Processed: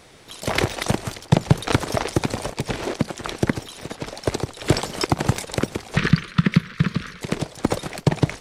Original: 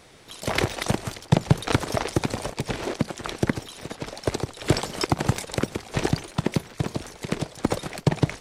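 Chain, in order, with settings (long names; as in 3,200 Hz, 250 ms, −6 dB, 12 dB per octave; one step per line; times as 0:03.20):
0:05.97–0:07.21: drawn EQ curve 110 Hz 0 dB, 180 Hz +10 dB, 320 Hz −7 dB, 490 Hz −4 dB, 780 Hz −19 dB, 1,200 Hz +7 dB, 1,700 Hz +9 dB, 2,500 Hz +5 dB, 4,200 Hz +2 dB, 7,300 Hz −10 dB
level +2.5 dB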